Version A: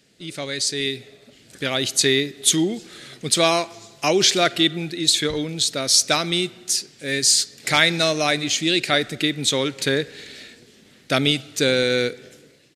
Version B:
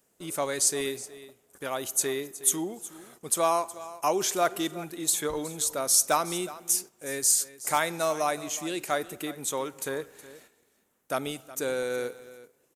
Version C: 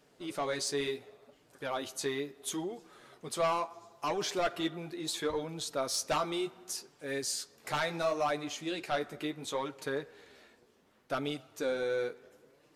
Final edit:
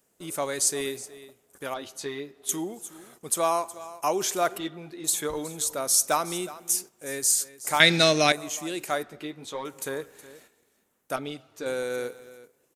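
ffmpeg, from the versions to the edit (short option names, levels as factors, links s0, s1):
-filter_complex "[2:a]asplit=4[s0][s1][s2][s3];[1:a]asplit=6[s4][s5][s6][s7][s8][s9];[s4]atrim=end=1.742[s10];[s0]atrim=start=1.738:end=2.492[s11];[s5]atrim=start=2.488:end=4.582[s12];[s1]atrim=start=4.578:end=5.042[s13];[s6]atrim=start=5.038:end=7.802[s14];[0:a]atrim=start=7.798:end=8.322[s15];[s7]atrim=start=8.318:end=9.032[s16];[s2]atrim=start=9.028:end=9.652[s17];[s8]atrim=start=9.648:end=11.162[s18];[s3]atrim=start=11.158:end=11.662[s19];[s9]atrim=start=11.658[s20];[s10][s11]acrossfade=d=0.004:c1=hsin:c2=hsin[s21];[s21][s12]acrossfade=d=0.004:c1=hsin:c2=hsin[s22];[s22][s13]acrossfade=d=0.004:c1=hsin:c2=hsin[s23];[s23][s14]acrossfade=d=0.004:c1=hsin:c2=hsin[s24];[s24][s15]acrossfade=d=0.004:c1=hsin:c2=hsin[s25];[s25][s16]acrossfade=d=0.004:c1=hsin:c2=hsin[s26];[s26][s17]acrossfade=d=0.004:c1=hsin:c2=hsin[s27];[s27][s18]acrossfade=d=0.004:c1=hsin:c2=hsin[s28];[s28][s19]acrossfade=d=0.004:c1=hsin:c2=hsin[s29];[s29][s20]acrossfade=d=0.004:c1=hsin:c2=hsin"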